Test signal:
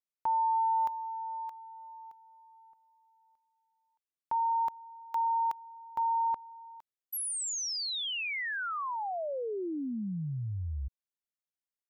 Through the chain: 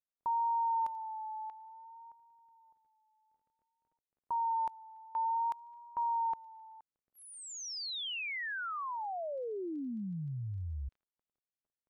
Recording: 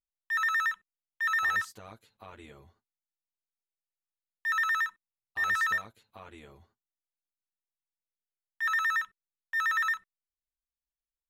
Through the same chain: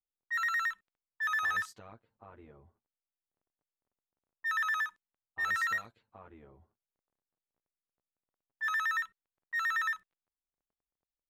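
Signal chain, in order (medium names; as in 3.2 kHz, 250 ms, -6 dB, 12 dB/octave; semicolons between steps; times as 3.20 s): vibrato 0.56 Hz 55 cents; crackle 15 per s -53 dBFS; level-controlled noise filter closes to 830 Hz, open at -28.5 dBFS; trim -3.5 dB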